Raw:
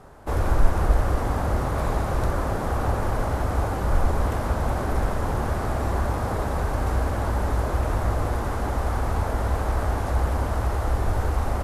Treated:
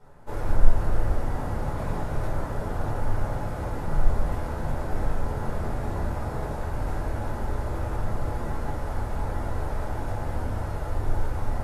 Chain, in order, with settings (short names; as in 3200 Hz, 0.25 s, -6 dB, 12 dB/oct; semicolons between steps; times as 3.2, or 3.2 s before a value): shoebox room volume 330 m³, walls furnished, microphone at 4.6 m; gain -14.5 dB